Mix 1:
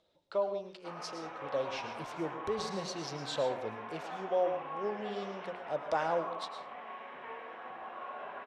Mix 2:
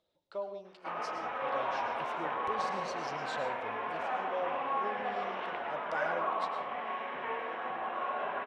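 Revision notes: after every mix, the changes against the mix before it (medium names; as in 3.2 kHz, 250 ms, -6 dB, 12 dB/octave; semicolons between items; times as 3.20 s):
speech -6.5 dB; background +8.0 dB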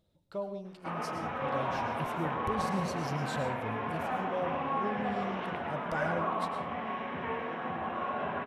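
master: remove three-band isolator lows -19 dB, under 360 Hz, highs -23 dB, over 6.9 kHz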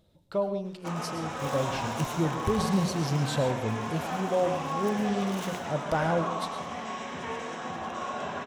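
speech +8.5 dB; background: remove low-pass 2.7 kHz 24 dB/octave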